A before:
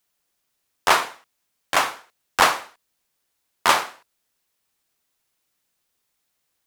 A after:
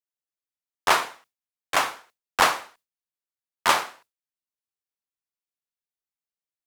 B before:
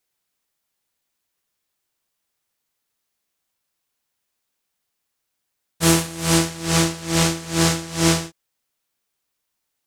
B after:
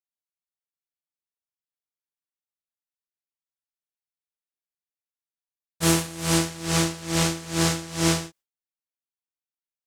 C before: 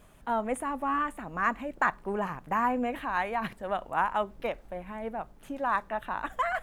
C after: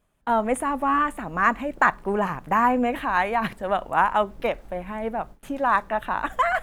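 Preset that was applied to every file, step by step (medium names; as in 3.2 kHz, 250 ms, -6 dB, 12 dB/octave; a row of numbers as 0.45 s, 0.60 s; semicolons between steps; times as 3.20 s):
gate with hold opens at -42 dBFS; normalise loudness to -24 LUFS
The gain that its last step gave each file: -2.5 dB, -4.0 dB, +7.5 dB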